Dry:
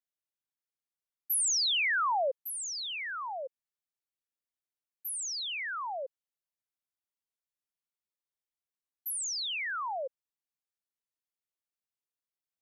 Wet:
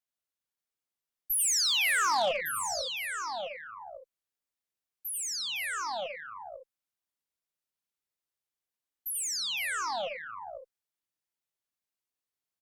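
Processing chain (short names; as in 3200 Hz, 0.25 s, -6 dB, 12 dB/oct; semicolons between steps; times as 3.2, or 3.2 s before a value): tapped delay 85/97/510/539/564/570 ms -7.5/-9.5/-12/-12/-17/-17.5 dB; added harmonics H 2 -14 dB, 4 -16 dB, 5 -42 dB, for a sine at -17.5 dBFS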